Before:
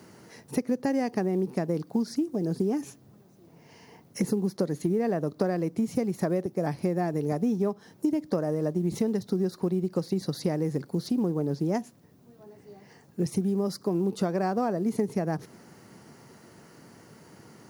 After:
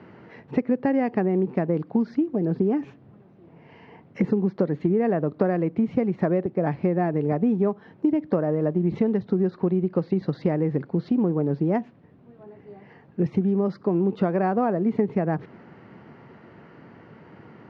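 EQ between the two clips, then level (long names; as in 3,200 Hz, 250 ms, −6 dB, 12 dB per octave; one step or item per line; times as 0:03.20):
low-pass filter 2,800 Hz 24 dB per octave
+4.5 dB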